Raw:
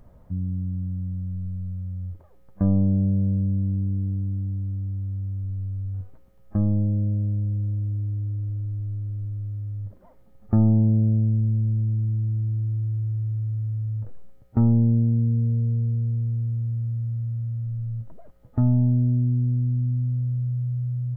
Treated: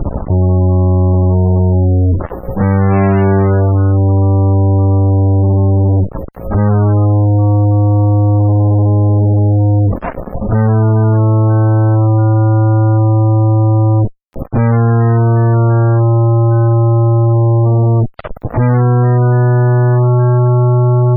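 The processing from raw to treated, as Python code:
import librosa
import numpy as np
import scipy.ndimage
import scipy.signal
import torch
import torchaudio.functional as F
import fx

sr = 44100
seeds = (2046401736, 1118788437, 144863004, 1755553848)

y = fx.echo_stepped(x, sr, ms=150, hz=400.0, octaves=0.7, feedback_pct=70, wet_db=-10)
y = fx.fuzz(y, sr, gain_db=49.0, gate_db=-51.0)
y = fx.spec_gate(y, sr, threshold_db=-25, keep='strong')
y = y * librosa.db_to_amplitude(4.5)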